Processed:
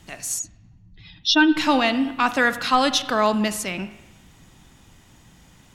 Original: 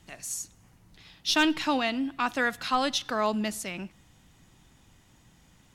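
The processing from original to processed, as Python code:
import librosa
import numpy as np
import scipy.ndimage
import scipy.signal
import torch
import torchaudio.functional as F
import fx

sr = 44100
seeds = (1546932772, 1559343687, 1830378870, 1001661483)

y = fx.spec_expand(x, sr, power=2.1, at=(0.38, 1.56), fade=0.02)
y = fx.rev_spring(y, sr, rt60_s=1.1, pass_ms=(38, 43, 53), chirp_ms=65, drr_db=12.0)
y = y * 10.0 ** (7.5 / 20.0)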